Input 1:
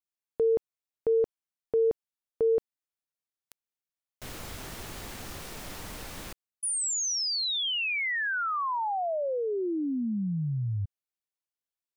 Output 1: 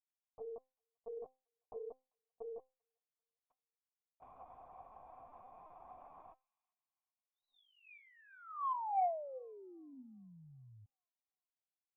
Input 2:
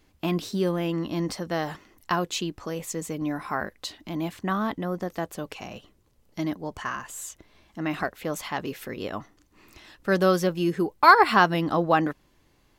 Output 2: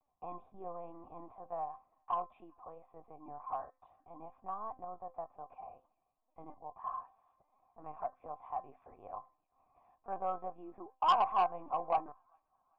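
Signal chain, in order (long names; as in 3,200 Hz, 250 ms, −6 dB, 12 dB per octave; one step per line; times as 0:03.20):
linear-prediction vocoder at 8 kHz pitch kept
formant resonators in series a
tuned comb filter 260 Hz, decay 0.28 s, harmonics all, mix 60%
on a send: delay with a high-pass on its return 393 ms, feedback 42%, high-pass 2,900 Hz, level −18 dB
on the sum: soft clipping −28 dBFS
level +7 dB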